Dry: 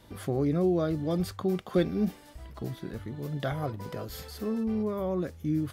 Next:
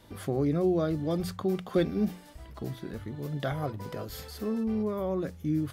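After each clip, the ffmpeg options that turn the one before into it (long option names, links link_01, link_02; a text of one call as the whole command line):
ffmpeg -i in.wav -af "bandreject=frequency=60:width_type=h:width=6,bandreject=frequency=120:width_type=h:width=6,bandreject=frequency=180:width_type=h:width=6" out.wav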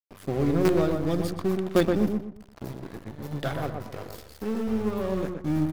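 ffmpeg -i in.wav -filter_complex "[0:a]asplit=2[link_01][link_02];[link_02]acrusher=bits=4:dc=4:mix=0:aa=0.000001,volume=-6.5dB[link_03];[link_01][link_03]amix=inputs=2:normalize=0,aeval=exprs='sgn(val(0))*max(abs(val(0))-0.0141,0)':channel_layout=same,asplit=2[link_04][link_05];[link_05]adelay=122,lowpass=frequency=1800:poles=1,volume=-4dB,asplit=2[link_06][link_07];[link_07]adelay=122,lowpass=frequency=1800:poles=1,volume=0.32,asplit=2[link_08][link_09];[link_09]adelay=122,lowpass=frequency=1800:poles=1,volume=0.32,asplit=2[link_10][link_11];[link_11]adelay=122,lowpass=frequency=1800:poles=1,volume=0.32[link_12];[link_04][link_06][link_08][link_10][link_12]amix=inputs=5:normalize=0,volume=2dB" out.wav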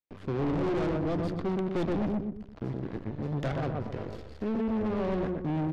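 ffmpeg -i in.wav -filter_complex "[0:a]lowpass=3600,aeval=exprs='(tanh(39.8*val(0)+0.6)-tanh(0.6))/39.8':channel_layout=same,acrossover=split=530|1400[link_01][link_02][link_03];[link_01]aeval=exprs='0.0422*sin(PI/2*1.41*val(0)/0.0422)':channel_layout=same[link_04];[link_04][link_02][link_03]amix=inputs=3:normalize=0,volume=2.5dB" out.wav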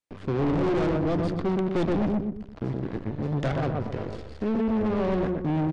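ffmpeg -i in.wav -af "aresample=22050,aresample=44100,volume=4.5dB" out.wav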